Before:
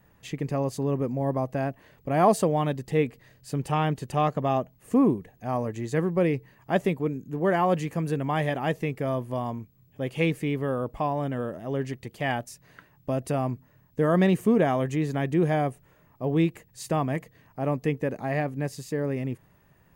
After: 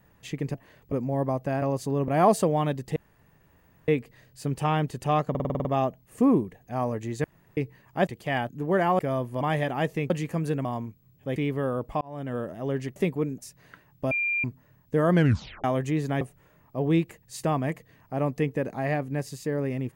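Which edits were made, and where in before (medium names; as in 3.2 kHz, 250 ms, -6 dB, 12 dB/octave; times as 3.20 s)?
0.54–1.00 s: swap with 1.70–2.08 s
2.96 s: insert room tone 0.92 s
4.38 s: stutter 0.05 s, 8 plays
5.97–6.30 s: room tone
6.80–7.22 s: swap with 12.01–12.43 s
7.72–8.27 s: swap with 8.96–9.38 s
10.09–10.41 s: delete
11.06–11.43 s: fade in
13.16–13.49 s: bleep 2.39 kHz -23.5 dBFS
14.18 s: tape stop 0.51 s
15.26–15.67 s: delete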